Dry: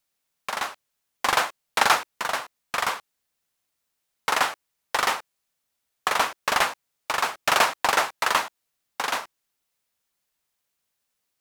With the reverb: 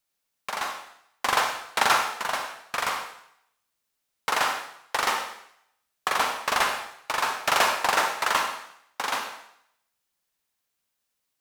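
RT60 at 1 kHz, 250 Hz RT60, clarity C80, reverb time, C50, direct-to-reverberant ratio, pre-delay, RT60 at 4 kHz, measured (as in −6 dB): 0.70 s, 0.65 s, 8.0 dB, 0.70 s, 5.5 dB, 4.0 dB, 37 ms, 0.70 s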